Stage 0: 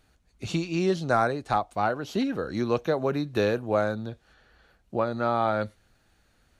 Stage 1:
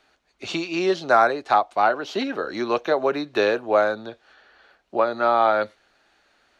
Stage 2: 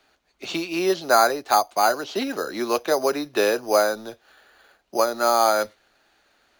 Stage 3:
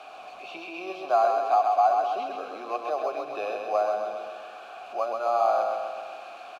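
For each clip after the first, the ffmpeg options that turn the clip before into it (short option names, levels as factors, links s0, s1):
-filter_complex "[0:a]acrossover=split=320 5900:gain=0.0794 1 0.158[s0][s1][s2];[s0][s1][s2]amix=inputs=3:normalize=0,bandreject=f=490:w=12,volume=2.37"
-filter_complex "[0:a]acrossover=split=130|1500[s0][s1][s2];[s0]aeval=exprs='(mod(422*val(0)+1,2)-1)/422':c=same[s3];[s1]acrusher=samples=8:mix=1:aa=0.000001[s4];[s3][s4][s2]amix=inputs=3:normalize=0"
-filter_complex "[0:a]aeval=exprs='val(0)+0.5*0.0422*sgn(val(0))':c=same,asplit=3[s0][s1][s2];[s0]bandpass=f=730:t=q:w=8,volume=1[s3];[s1]bandpass=f=1090:t=q:w=8,volume=0.501[s4];[s2]bandpass=f=2440:t=q:w=8,volume=0.355[s5];[s3][s4][s5]amix=inputs=3:normalize=0,aecho=1:1:130|260|390|520|650|780|910|1040:0.631|0.372|0.22|0.13|0.0765|0.0451|0.0266|0.0157"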